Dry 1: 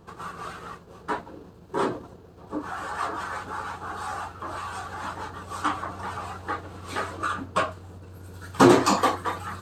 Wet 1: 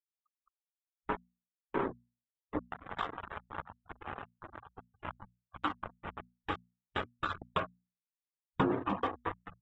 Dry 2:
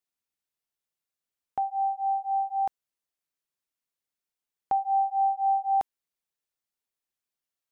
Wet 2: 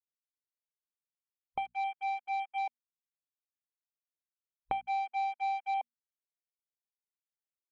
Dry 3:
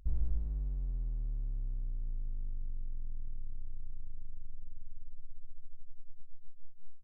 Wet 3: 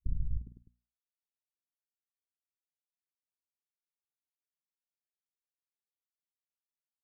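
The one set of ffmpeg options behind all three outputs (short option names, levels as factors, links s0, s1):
-af "aresample=8000,aeval=exprs='sgn(val(0))*max(abs(val(0))-0.0335,0)':c=same,aresample=44100,acompressor=threshold=0.02:ratio=6,afftfilt=real='re*gte(hypot(re,im),0.00708)':imag='im*gte(hypot(re,im),0.00708)':win_size=1024:overlap=0.75,afwtdn=0.00178,lowshelf=f=300:g=6.5,bandreject=f=60:t=h:w=6,bandreject=f=120:t=h:w=6,bandreject=f=180:t=h:w=6,bandreject=f=240:t=h:w=6,volume=1.41"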